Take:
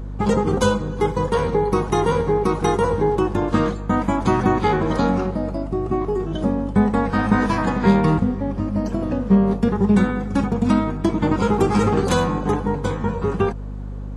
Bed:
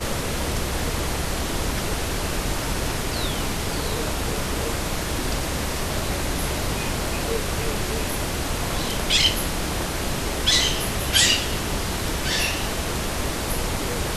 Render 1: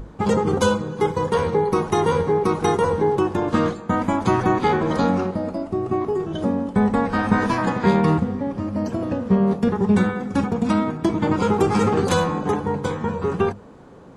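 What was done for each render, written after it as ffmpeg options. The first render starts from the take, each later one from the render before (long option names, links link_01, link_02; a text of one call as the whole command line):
ffmpeg -i in.wav -af "bandreject=frequency=50:width_type=h:width=6,bandreject=frequency=100:width_type=h:width=6,bandreject=frequency=150:width_type=h:width=6,bandreject=frequency=200:width_type=h:width=6,bandreject=frequency=250:width_type=h:width=6,bandreject=frequency=300:width_type=h:width=6" out.wav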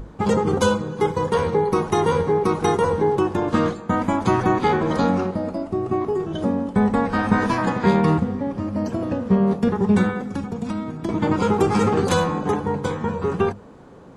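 ffmpeg -i in.wav -filter_complex "[0:a]asettb=1/sr,asplit=3[link_01][link_02][link_03];[link_01]atrim=end=10.214[link_04];[link_02]atrim=start=10.21:end=11.09,asetpts=PTS-STARTPTS,afade=type=in:duration=0.004:curve=qsin,afade=type=out:start_time=0.876:duration=0.004:curve=qsin,acrossover=split=170|440|3500[link_05][link_06][link_07][link_08];[link_05]acompressor=threshold=-32dB:ratio=3[link_09];[link_06]acompressor=threshold=-31dB:ratio=3[link_10];[link_07]acompressor=threshold=-38dB:ratio=3[link_11];[link_08]acompressor=threshold=-50dB:ratio=3[link_12];[link_09][link_10][link_11][link_12]amix=inputs=4:normalize=0[link_13];[link_03]atrim=start=11.086[link_14];[link_04][link_13]acrossfade=duration=0.004:curve1=hsin:curve2=qsin[link_15];[link_15][link_14]acrossfade=duration=0.004:curve1=qsin:curve2=hsin" out.wav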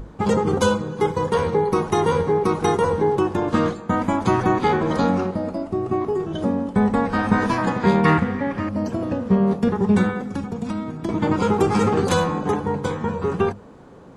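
ffmpeg -i in.wav -filter_complex "[0:a]asettb=1/sr,asplit=3[link_01][link_02][link_03];[link_01]atrim=end=8.054[link_04];[link_02]atrim=start=8.05:end=8.69,asetpts=PTS-STARTPTS,afade=type=in:duration=0.004:curve=qsin,afade=type=out:start_time=0.636:duration=0.004:curve=qsin,equalizer=frequency=1900:width_type=o:width=1.4:gain=15[link_05];[link_03]atrim=start=8.686[link_06];[link_04][link_05]acrossfade=duration=0.004:curve1=hsin:curve2=qsin[link_07];[link_07][link_06]acrossfade=duration=0.004:curve1=qsin:curve2=hsin" out.wav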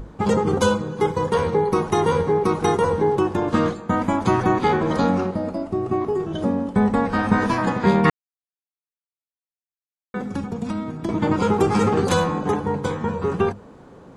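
ffmpeg -i in.wav -filter_complex "[0:a]asplit=3[link_01][link_02][link_03];[link_01]atrim=end=8.1,asetpts=PTS-STARTPTS,afade=type=out:start_time=8.096:duration=0.004:curve=hsin[link_04];[link_02]atrim=start=8.1:end=10.14,asetpts=PTS-STARTPTS,volume=0[link_05];[link_03]atrim=start=10.14,asetpts=PTS-STARTPTS,afade=type=in:duration=0.004:curve=hsin[link_06];[link_04][link_05][link_06]concat=n=3:v=0:a=1" out.wav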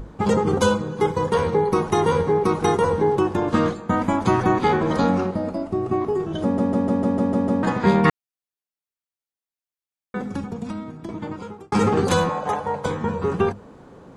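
ffmpeg -i in.wav -filter_complex "[0:a]asettb=1/sr,asplit=3[link_01][link_02][link_03];[link_01]atrim=end=12.294[link_04];[link_02]atrim=start=12.29:end=12.86,asetpts=PTS-STARTPTS,afade=type=in:duration=0.004:curve=qsin,afade=type=out:start_time=0.566:duration=0.004:curve=qsin,lowshelf=frequency=450:width_type=q:width=3:gain=-8[link_05];[link_03]atrim=start=12.856[link_06];[link_04][link_05]acrossfade=duration=0.004:curve1=hsin:curve2=qsin[link_07];[link_07][link_06]acrossfade=duration=0.004:curve1=qsin:curve2=hsin,asplit=10[link_08][link_09][link_10][link_11][link_12][link_13][link_14][link_15][link_16][link_17];[link_08]atrim=end=6.582[link_18];[link_09]atrim=start=6.428:end=6.582[link_19];[link_10]atrim=start=6.428:end=6.582[link_20];[link_11]atrim=start=6.428:end=6.582[link_21];[link_12]atrim=start=6.428:end=6.582[link_22];[link_13]atrim=start=6.428:end=6.582[link_23];[link_14]atrim=start=6.428:end=6.582[link_24];[link_15]atrim=start=6.428:end=6.582[link_25];[link_16]atrim=start=7.628:end=11.72,asetpts=PTS-STARTPTS,afade=type=out:start_time=2.532:duration=1.56[link_26];[link_17]atrim=start=11.72,asetpts=PTS-STARTPTS,afade=type=in:duration=0.004:curve=hsin[link_27];[link_18][link_19]acrossfade=duration=0.004:curve1=hsin:curve2=hsin[link_28];[link_28][link_20]acrossfade=duration=0.004:curve1=hsin:curve2=hsin[link_29];[link_29][link_21]acrossfade=duration=0.004:curve1=hsin:curve2=hsin[link_30];[link_30][link_22]acrossfade=duration=0.004:curve1=hsin:curve2=hsin[link_31];[link_31][link_23]acrossfade=duration=0.004:curve1=hsin:curve2=hsin[link_32];[link_32][link_24]acrossfade=duration=0.004:curve1=hsin:curve2=hsin[link_33];[link_33][link_25]acrossfade=duration=0.004:curve1=hsin:curve2=hsin[link_34];[link_26][link_27]concat=n=2:v=0:a=1[link_35];[link_34][link_35]acrossfade=duration=0.004:curve1=hsin:curve2=hsin" out.wav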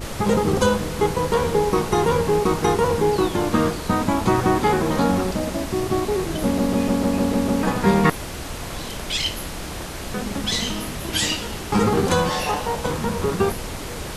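ffmpeg -i in.wav -i bed.wav -filter_complex "[1:a]volume=-5.5dB[link_01];[0:a][link_01]amix=inputs=2:normalize=0" out.wav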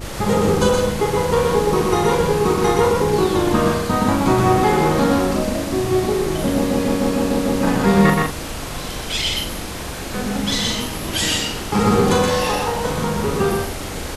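ffmpeg -i in.wav -filter_complex "[0:a]asplit=2[link_01][link_02];[link_02]adelay=40,volume=-4.5dB[link_03];[link_01][link_03]amix=inputs=2:normalize=0,aecho=1:1:122.4|166.2:0.708|0.316" out.wav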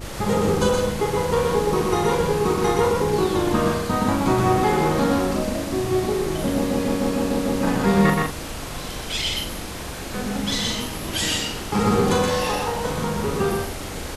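ffmpeg -i in.wav -af "volume=-3.5dB" out.wav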